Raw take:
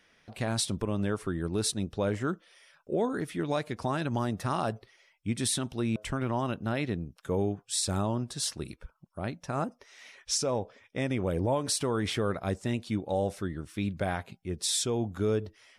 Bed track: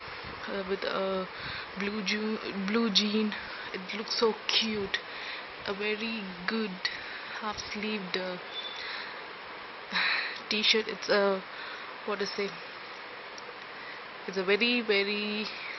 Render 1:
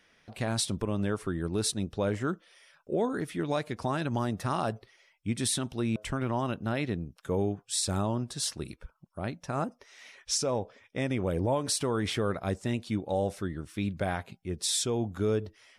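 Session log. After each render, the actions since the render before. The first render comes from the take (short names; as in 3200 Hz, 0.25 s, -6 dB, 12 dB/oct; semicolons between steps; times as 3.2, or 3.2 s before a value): nothing audible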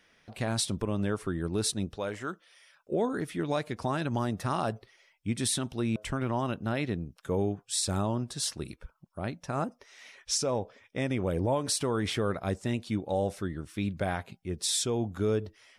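1.96–2.91 low shelf 410 Hz -11.5 dB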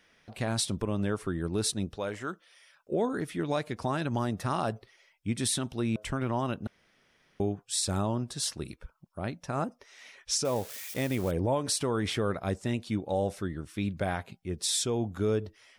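6.67–7.4 room tone; 10.45–11.31 switching spikes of -31 dBFS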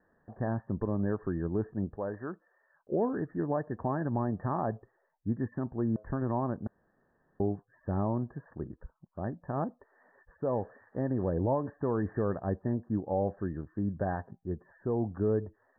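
Chebyshev low-pass 1800 Hz, order 10; bell 1400 Hz -11 dB 0.33 oct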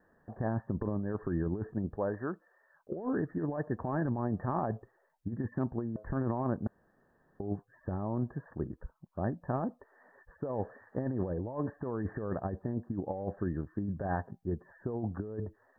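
negative-ratio compressor -32 dBFS, ratio -0.5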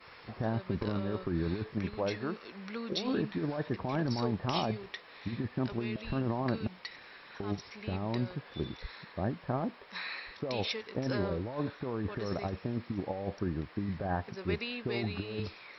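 add bed track -12 dB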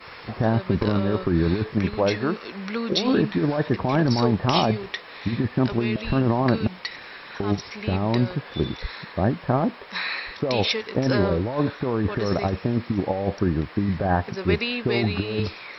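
gain +11.5 dB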